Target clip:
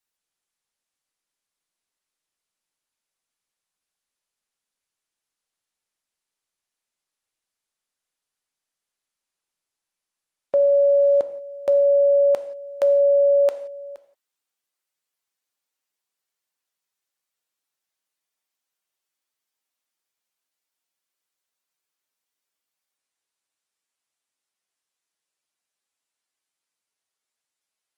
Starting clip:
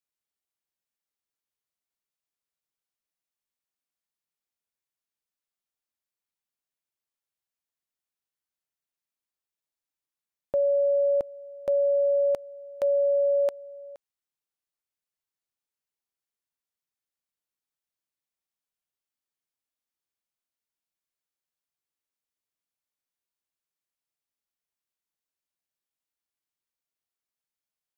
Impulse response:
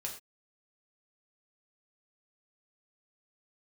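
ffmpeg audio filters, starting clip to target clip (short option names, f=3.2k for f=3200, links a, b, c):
-filter_complex "[0:a]highpass=f=410:p=1,asplit=2[a][b];[1:a]atrim=start_sample=2205,atrim=end_sample=4410,asetrate=23814,aresample=44100[c];[b][c]afir=irnorm=-1:irlink=0,volume=-9dB[d];[a][d]amix=inputs=2:normalize=0,volume=5dB" -ar 48000 -c:a libopus -b:a 20k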